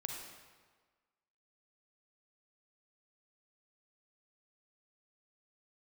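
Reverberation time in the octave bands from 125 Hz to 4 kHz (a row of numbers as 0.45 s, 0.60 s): 1.4 s, 1.4 s, 1.5 s, 1.5 s, 1.3 s, 1.1 s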